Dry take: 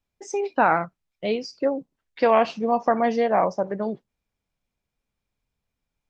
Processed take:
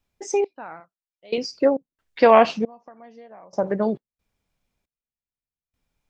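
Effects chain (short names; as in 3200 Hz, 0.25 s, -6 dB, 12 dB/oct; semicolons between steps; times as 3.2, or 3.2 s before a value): 0.8–1.38 tone controls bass -13 dB, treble +5 dB; 2.55–3.63 compressor 6:1, threshold -22 dBFS, peak gain reduction 8 dB; step gate "xx....xx.x" 68 bpm -24 dB; gain +5 dB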